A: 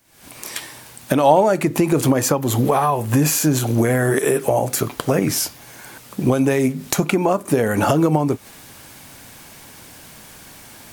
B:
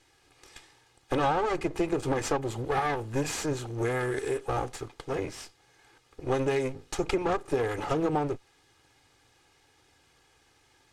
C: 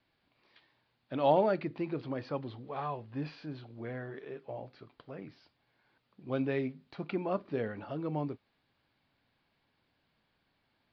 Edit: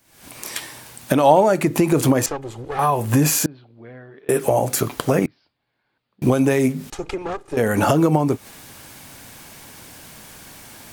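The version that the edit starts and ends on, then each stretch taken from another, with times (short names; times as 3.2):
A
2.26–2.79 from B
3.46–4.29 from C
5.26–6.22 from C
6.9–7.57 from B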